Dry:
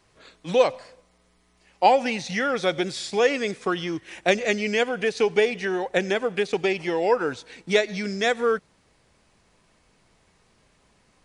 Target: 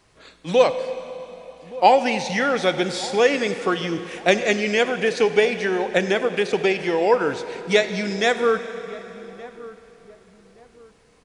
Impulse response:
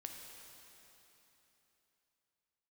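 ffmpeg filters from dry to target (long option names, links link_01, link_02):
-filter_complex "[0:a]asplit=2[link_01][link_02];[link_02]adelay=1171,lowpass=frequency=1100:poles=1,volume=-18dB,asplit=2[link_03][link_04];[link_04]adelay=1171,lowpass=frequency=1100:poles=1,volume=0.33,asplit=2[link_05][link_06];[link_06]adelay=1171,lowpass=frequency=1100:poles=1,volume=0.33[link_07];[link_01][link_03][link_05][link_07]amix=inputs=4:normalize=0,asplit=2[link_08][link_09];[1:a]atrim=start_sample=2205[link_10];[link_09][link_10]afir=irnorm=-1:irlink=0,volume=1dB[link_11];[link_08][link_11]amix=inputs=2:normalize=0,volume=-1dB"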